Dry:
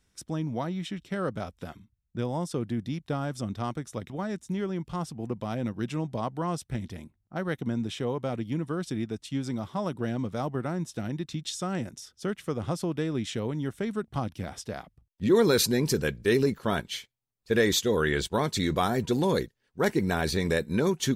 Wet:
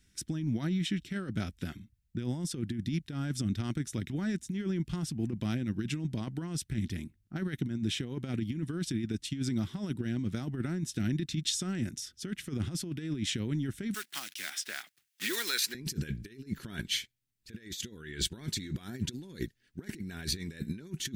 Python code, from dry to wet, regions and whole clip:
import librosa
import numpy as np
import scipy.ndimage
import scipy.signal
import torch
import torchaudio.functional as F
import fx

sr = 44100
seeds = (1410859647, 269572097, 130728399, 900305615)

y = fx.chain(x, sr, fx.block_float(bits=5),
    fx.highpass(hz=1100.0, slope=12),
    fx.band_squash(depth_pct=70), at=(13.94, 15.75))
y = fx.over_compress(y, sr, threshold_db=-32.0, ratio=-0.5)
y = fx.band_shelf(y, sr, hz=740.0, db=-14.0, octaves=1.7)